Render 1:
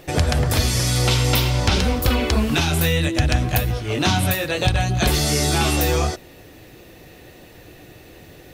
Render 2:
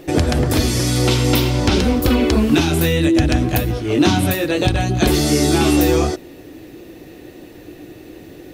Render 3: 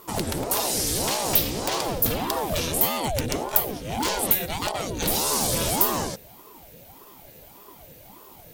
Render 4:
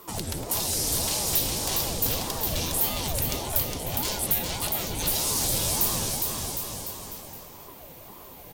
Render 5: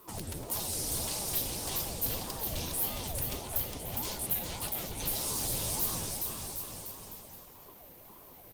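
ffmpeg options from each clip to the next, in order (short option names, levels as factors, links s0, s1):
-af "equalizer=f=310:t=o:w=0.95:g=12"
-af "aeval=exprs='0.398*(abs(mod(val(0)/0.398+3,4)-2)-1)':c=same,aemphasis=mode=production:type=75fm,aeval=exprs='val(0)*sin(2*PI*450*n/s+450*0.65/1.7*sin(2*PI*1.7*n/s))':c=same,volume=0.376"
-filter_complex "[0:a]asoftclip=type=tanh:threshold=0.158,acrossover=split=140|3000[s0][s1][s2];[s1]acompressor=threshold=0.00891:ratio=2[s3];[s0][s3][s2]amix=inputs=3:normalize=0,aecho=1:1:410|758.5|1055|1307|1521:0.631|0.398|0.251|0.158|0.1"
-af "volume=0.473" -ar 48000 -c:a libopus -b:a 24k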